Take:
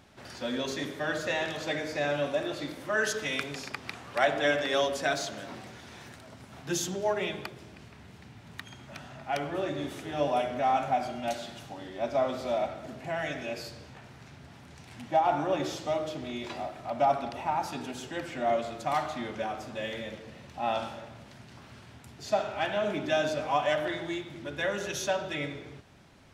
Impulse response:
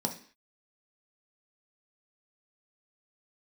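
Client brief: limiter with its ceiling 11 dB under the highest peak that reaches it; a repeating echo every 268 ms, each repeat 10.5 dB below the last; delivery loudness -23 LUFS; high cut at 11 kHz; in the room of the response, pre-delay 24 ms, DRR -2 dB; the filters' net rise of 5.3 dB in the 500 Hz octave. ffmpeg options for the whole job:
-filter_complex "[0:a]lowpass=11000,equalizer=f=500:t=o:g=7,alimiter=limit=0.106:level=0:latency=1,aecho=1:1:268|536|804:0.299|0.0896|0.0269,asplit=2[s0][s1];[1:a]atrim=start_sample=2205,adelay=24[s2];[s1][s2]afir=irnorm=-1:irlink=0,volume=0.708[s3];[s0][s3]amix=inputs=2:normalize=0"

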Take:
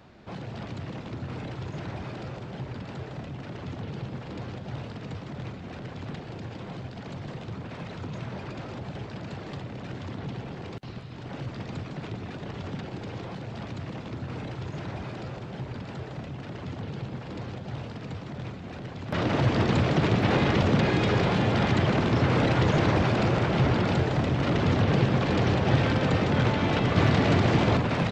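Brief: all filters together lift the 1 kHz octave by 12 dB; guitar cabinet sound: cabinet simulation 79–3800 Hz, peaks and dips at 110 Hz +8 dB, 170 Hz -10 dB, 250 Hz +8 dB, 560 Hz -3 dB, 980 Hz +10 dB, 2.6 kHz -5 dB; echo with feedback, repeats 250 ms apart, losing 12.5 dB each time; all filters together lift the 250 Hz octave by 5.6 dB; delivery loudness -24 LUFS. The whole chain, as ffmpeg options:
-af "highpass=79,equalizer=f=110:t=q:w=4:g=8,equalizer=f=170:t=q:w=4:g=-10,equalizer=f=250:t=q:w=4:g=8,equalizer=f=560:t=q:w=4:g=-3,equalizer=f=980:t=q:w=4:g=10,equalizer=f=2600:t=q:w=4:g=-5,lowpass=f=3800:w=0.5412,lowpass=f=3800:w=1.3066,equalizer=f=250:t=o:g=3.5,equalizer=f=1000:t=o:g=8,aecho=1:1:250|500|750:0.237|0.0569|0.0137,volume=0.794"

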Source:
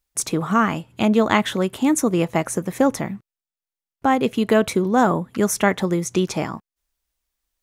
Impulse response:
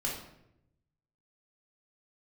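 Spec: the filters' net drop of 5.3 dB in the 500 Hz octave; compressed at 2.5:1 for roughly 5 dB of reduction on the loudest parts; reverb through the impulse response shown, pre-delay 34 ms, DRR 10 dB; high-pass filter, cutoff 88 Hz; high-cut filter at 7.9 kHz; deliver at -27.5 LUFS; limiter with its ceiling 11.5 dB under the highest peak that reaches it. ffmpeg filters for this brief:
-filter_complex "[0:a]highpass=88,lowpass=7900,equalizer=f=500:t=o:g=-7,acompressor=threshold=0.0794:ratio=2.5,alimiter=limit=0.1:level=0:latency=1,asplit=2[s0][s1];[1:a]atrim=start_sample=2205,adelay=34[s2];[s1][s2]afir=irnorm=-1:irlink=0,volume=0.188[s3];[s0][s3]amix=inputs=2:normalize=0,volume=1.26"

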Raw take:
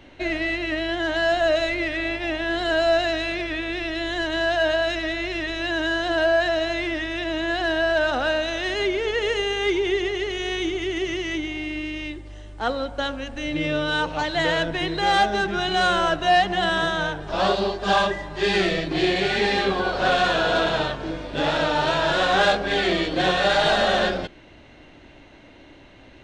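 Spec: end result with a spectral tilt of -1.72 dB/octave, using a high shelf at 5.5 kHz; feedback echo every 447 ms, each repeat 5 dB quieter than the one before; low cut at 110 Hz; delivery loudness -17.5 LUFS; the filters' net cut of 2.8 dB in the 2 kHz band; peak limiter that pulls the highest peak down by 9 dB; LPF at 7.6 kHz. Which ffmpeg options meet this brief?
-af "highpass=110,lowpass=7600,equalizer=f=2000:t=o:g=-4.5,highshelf=f=5500:g=7,alimiter=limit=0.133:level=0:latency=1,aecho=1:1:447|894|1341|1788|2235|2682|3129:0.562|0.315|0.176|0.0988|0.0553|0.031|0.0173,volume=2.24"

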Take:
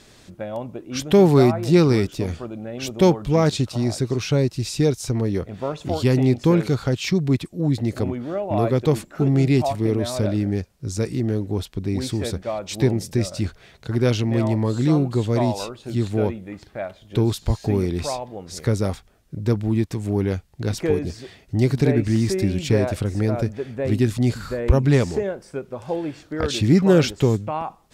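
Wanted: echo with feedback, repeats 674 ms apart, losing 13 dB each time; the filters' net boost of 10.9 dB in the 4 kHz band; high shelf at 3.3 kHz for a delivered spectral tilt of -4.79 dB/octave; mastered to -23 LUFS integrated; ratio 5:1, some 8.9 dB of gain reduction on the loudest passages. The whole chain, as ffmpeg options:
-af "highshelf=f=3300:g=8,equalizer=f=4000:t=o:g=7.5,acompressor=threshold=0.112:ratio=5,aecho=1:1:674|1348|2022:0.224|0.0493|0.0108,volume=1.19"

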